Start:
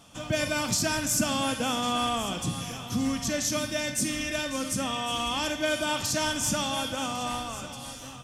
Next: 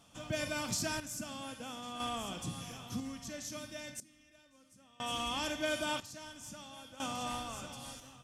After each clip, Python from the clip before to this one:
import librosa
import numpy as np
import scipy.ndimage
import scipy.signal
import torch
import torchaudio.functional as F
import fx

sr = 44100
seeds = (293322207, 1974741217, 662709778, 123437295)

y = fx.tremolo_random(x, sr, seeds[0], hz=1.0, depth_pct=95)
y = y * 10.0 ** (-7.0 / 20.0)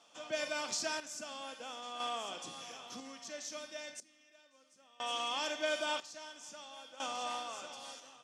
y = scipy.signal.sosfilt(scipy.signal.cheby1(2, 1.0, [480.0, 6100.0], 'bandpass', fs=sr, output='sos'), x)
y = y * 10.0 ** (1.0 / 20.0)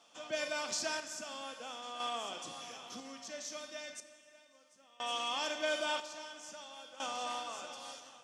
y = fx.rev_plate(x, sr, seeds[1], rt60_s=2.4, hf_ratio=0.75, predelay_ms=0, drr_db=11.0)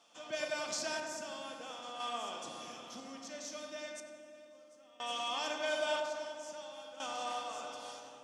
y = fx.echo_filtered(x, sr, ms=96, feedback_pct=83, hz=1500.0, wet_db=-4.0)
y = y * 10.0 ** (-2.0 / 20.0)